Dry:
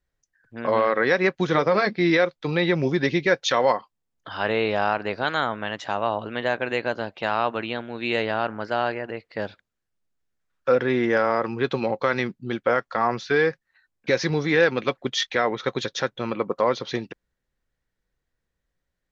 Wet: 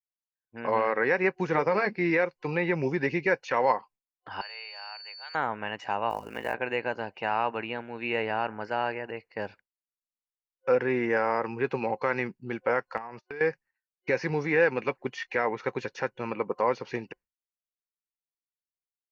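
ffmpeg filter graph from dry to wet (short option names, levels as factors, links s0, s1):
-filter_complex "[0:a]asettb=1/sr,asplit=3[s0][s1][s2];[s0]atrim=end=4.414[s3];[s1]atrim=start=4.41:end=5.35,asetpts=PTS-STARTPTS,afade=t=in:d=0.004:c=qsin,afade=t=out:st=0.936:d=0.004:c=qsin,highpass=f=510:w=0.5412,highpass=f=510:w=1.3066,aeval=exprs='val(0)+0.0398*sin(2*PI*4500*n/s)':c=same,aderivative[s4];[s2]atrim=start=5.346[s5];[s3][s4]acrossfade=d=0.004:c1=hsin:c2=qsin[s6];[s6][s5]acrossfade=d=0.004:c1=qsin:c2=hsin,asettb=1/sr,asplit=3[s7][s8][s9];[s7]atrim=end=6.104[s10];[s8]atrim=start=6.1:end=6.54,asetpts=PTS-STARTPTS,afade=t=in:d=0.004:c=qsin,afade=t=out:st=0.436:d=0.004:c=qsin,lowshelf=f=130:g=-2.5,acrusher=bits=4:mode=log:mix=0:aa=0.000001,aeval=exprs='val(0)*sin(2*PI*25*n/s)':c=same[s11];[s9]atrim=start=6.536[s12];[s10][s11]acrossfade=d=0.004:c1=hsin:c2=qsin[s13];[s13][s12]acrossfade=d=0.004:c1=qsin:c2=hsin,asettb=1/sr,asplit=3[s14][s15][s16];[s14]atrim=end=12.974[s17];[s15]atrim=start=12.97:end=13.41,asetpts=PTS-STARTPTS,afade=t=in:d=0.004:c=qsin,afade=t=out:st=0.436:d=0.004:c=qsin,bandreject=f=304.3:t=h:w=4,bandreject=f=608.6:t=h:w=4,bandreject=f=912.9:t=h:w=4,bandreject=f=1217.2:t=h:w=4,bandreject=f=1521.5:t=h:w=4,bandreject=f=1825.8:t=h:w=4,bandreject=f=2130.1:t=h:w=4,bandreject=f=2434.4:t=h:w=4,bandreject=f=2738.7:t=h:w=4,bandreject=f=3043:t=h:w=4,bandreject=f=3347.3:t=h:w=4,bandreject=f=3651.6:t=h:w=4,bandreject=f=3955.9:t=h:w=4,bandreject=f=4260.2:t=h:w=4,bandreject=f=4564.5:t=h:w=4,bandreject=f=4868.8:t=h:w=4,bandreject=f=5173.1:t=h:w=4,bandreject=f=5477.4:t=h:w=4,bandreject=f=5781.7:t=h:w=4,bandreject=f=6086:t=h:w=4,bandreject=f=6390.3:t=h:w=4,bandreject=f=6694.6:t=h:w=4,bandreject=f=6998.9:t=h:w=4,bandreject=f=7303.2:t=h:w=4,bandreject=f=7607.5:t=h:w=4,bandreject=f=7911.8:t=h:w=4,bandreject=f=8216.1:t=h:w=4,bandreject=f=8520.4:t=h:w=4,bandreject=f=8824.7:t=h:w=4,bandreject=f=9129:t=h:w=4,bandreject=f=9433.3:t=h:w=4,bandreject=f=9737.6:t=h:w=4,bandreject=f=10041.9:t=h:w=4,bandreject=f=10346.2:t=h:w=4,agate=range=0.0126:threshold=0.0224:ratio=16:release=100:detection=peak,acompressor=threshold=0.0282:ratio=10:attack=3.2:release=140:knee=1:detection=peak[s18];[s16]atrim=start=13.406[s19];[s17][s18]acrossfade=d=0.004:c1=hsin:c2=qsin[s20];[s20][s19]acrossfade=d=0.004:c1=qsin:c2=hsin,acrossover=split=2900[s21][s22];[s22]acompressor=threshold=0.0112:ratio=4:attack=1:release=60[s23];[s21][s23]amix=inputs=2:normalize=0,agate=range=0.0224:threshold=0.00794:ratio=3:detection=peak,superequalizer=7b=1.41:9b=2:11b=1.41:12b=1.78:13b=0.316,volume=0.473"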